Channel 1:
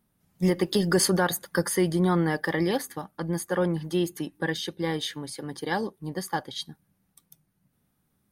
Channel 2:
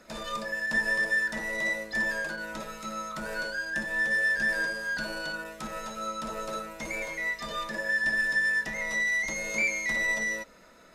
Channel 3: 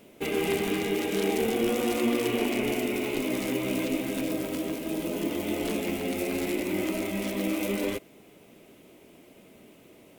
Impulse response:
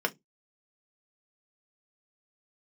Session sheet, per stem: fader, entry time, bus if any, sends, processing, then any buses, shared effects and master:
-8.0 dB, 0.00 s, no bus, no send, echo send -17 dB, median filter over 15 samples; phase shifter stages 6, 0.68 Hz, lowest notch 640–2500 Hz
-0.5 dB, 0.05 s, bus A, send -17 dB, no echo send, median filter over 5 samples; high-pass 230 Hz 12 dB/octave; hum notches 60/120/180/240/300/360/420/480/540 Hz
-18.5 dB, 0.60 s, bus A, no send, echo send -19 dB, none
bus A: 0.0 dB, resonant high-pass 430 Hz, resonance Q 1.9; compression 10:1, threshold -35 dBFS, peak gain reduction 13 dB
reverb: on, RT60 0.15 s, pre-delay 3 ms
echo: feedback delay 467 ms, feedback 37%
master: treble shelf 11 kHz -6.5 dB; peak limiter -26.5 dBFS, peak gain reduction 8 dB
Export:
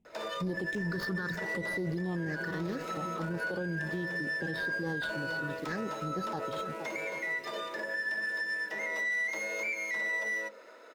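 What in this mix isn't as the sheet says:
stem 1 -8.0 dB -> -0.5 dB; stem 3: entry 0.60 s -> 1.05 s

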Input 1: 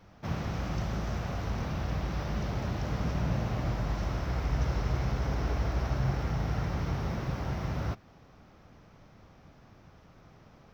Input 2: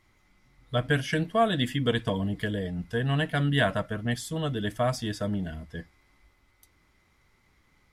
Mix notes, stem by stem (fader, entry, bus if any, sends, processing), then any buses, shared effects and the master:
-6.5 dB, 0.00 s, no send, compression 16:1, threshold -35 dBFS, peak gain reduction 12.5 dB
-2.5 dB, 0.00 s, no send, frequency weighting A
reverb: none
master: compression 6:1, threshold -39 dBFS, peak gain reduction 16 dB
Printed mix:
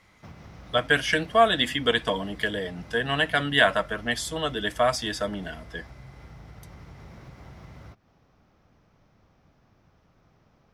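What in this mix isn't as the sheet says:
stem 2 -2.5 dB -> +6.5 dB; master: missing compression 6:1, threshold -39 dBFS, peak gain reduction 16 dB

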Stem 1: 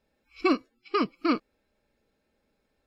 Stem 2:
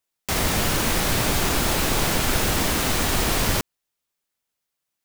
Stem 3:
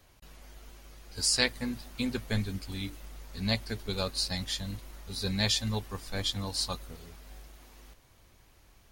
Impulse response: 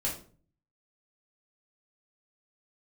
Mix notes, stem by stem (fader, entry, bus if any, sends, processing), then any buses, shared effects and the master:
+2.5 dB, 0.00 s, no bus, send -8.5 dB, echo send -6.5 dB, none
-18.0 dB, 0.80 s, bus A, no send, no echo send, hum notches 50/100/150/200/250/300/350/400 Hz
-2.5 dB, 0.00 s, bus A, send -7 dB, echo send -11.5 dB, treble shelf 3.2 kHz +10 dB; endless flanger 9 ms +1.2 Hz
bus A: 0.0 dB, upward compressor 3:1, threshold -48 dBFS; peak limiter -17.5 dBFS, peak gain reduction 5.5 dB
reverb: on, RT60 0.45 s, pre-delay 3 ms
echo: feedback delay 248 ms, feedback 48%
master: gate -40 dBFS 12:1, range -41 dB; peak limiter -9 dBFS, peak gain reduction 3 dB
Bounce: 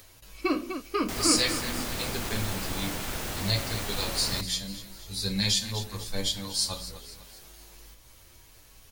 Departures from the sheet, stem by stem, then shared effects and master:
stem 1 +2.5 dB -> -5.5 dB; stem 2 -18.0 dB -> -12.0 dB; master: missing gate -40 dBFS 12:1, range -41 dB

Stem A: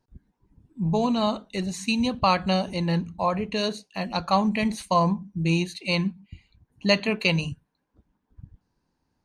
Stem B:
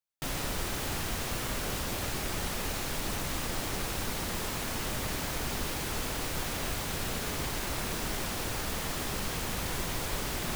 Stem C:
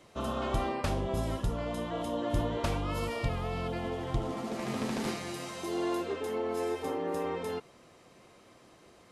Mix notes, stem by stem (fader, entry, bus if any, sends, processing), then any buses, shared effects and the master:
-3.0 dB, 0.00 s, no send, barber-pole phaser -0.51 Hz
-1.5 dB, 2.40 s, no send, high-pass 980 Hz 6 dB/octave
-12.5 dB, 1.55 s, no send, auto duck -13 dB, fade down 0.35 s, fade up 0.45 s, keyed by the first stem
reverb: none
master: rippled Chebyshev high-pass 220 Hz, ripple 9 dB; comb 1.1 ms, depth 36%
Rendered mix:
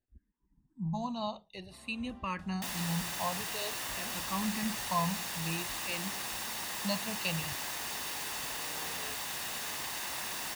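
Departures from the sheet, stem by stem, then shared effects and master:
stem A -3.0 dB -> -11.0 dB; master: missing rippled Chebyshev high-pass 220 Hz, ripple 9 dB

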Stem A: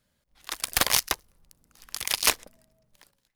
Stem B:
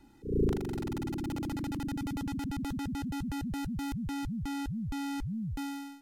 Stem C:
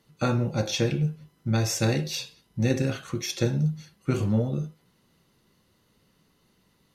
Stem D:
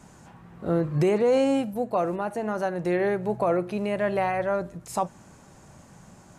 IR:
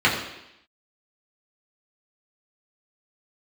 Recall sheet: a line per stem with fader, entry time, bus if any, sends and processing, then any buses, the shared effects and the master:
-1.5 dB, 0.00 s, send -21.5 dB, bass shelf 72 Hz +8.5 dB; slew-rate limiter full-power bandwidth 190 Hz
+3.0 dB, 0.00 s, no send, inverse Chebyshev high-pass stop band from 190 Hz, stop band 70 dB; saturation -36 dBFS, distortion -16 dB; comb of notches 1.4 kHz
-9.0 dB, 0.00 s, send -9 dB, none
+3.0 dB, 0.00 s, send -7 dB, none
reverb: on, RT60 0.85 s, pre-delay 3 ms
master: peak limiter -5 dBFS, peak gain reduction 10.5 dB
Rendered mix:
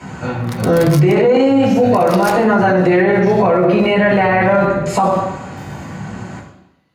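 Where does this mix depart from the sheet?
stem A: missing slew-rate limiter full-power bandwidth 190 Hz; stem D: send -7 dB -> -1 dB

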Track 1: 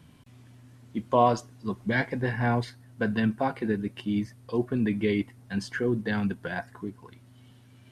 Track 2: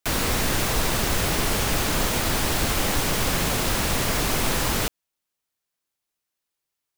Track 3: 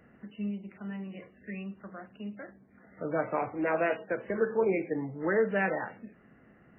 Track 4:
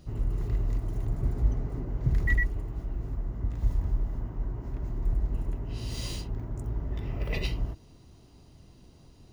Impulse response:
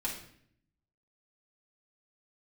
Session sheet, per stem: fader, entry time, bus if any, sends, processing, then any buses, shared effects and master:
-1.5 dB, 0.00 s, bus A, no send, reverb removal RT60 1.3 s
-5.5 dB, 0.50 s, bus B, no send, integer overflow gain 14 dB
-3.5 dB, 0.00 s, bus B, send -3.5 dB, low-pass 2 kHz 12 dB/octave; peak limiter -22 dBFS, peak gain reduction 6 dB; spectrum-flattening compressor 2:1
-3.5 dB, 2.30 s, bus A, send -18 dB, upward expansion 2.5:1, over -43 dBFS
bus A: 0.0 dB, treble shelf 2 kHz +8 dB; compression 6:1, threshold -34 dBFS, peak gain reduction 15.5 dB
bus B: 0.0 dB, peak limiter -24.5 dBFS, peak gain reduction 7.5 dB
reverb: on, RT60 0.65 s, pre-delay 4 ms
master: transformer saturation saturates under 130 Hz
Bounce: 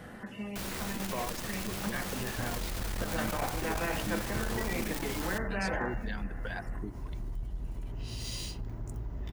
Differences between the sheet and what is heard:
stem 2 -5.5 dB -> -14.5 dB; stem 4: missing upward expansion 2.5:1, over -43 dBFS

